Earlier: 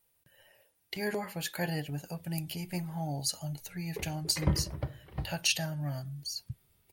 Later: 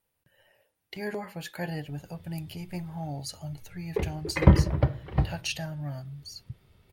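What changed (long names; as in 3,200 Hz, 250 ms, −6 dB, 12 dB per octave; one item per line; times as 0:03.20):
background +12.0 dB
master: add high-shelf EQ 3,900 Hz −9 dB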